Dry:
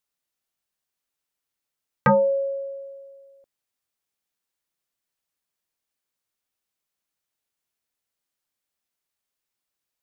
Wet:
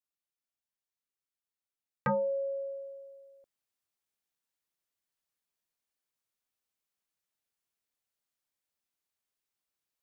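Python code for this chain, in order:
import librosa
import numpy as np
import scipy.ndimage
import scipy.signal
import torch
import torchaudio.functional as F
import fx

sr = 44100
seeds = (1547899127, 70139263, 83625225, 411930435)

y = fx.rider(x, sr, range_db=10, speed_s=0.5)
y = F.gain(torch.from_numpy(y), -9.0).numpy()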